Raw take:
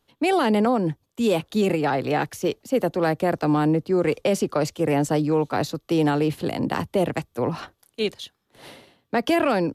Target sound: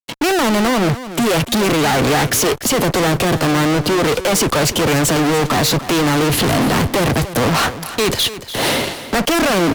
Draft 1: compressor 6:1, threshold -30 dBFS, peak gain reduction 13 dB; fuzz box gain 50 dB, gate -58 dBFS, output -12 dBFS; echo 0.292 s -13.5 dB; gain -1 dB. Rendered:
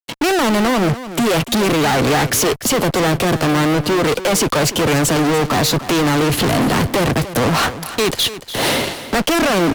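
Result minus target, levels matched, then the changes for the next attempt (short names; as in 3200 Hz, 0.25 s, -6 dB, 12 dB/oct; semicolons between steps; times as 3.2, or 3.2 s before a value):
compressor: peak gain reduction +5.5 dB
change: compressor 6:1, threshold -23.5 dBFS, peak gain reduction 7.5 dB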